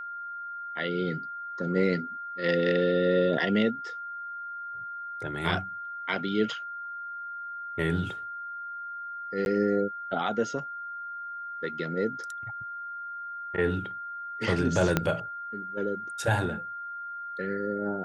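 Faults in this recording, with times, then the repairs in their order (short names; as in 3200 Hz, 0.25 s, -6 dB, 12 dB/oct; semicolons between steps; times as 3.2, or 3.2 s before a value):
tone 1400 Hz -35 dBFS
9.45–9.46 gap 11 ms
14.97 pop -9 dBFS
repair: de-click; notch 1400 Hz, Q 30; interpolate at 9.45, 11 ms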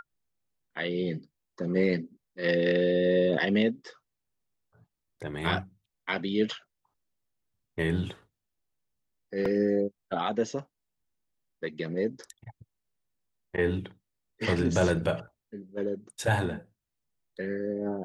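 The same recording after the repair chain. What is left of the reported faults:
14.97 pop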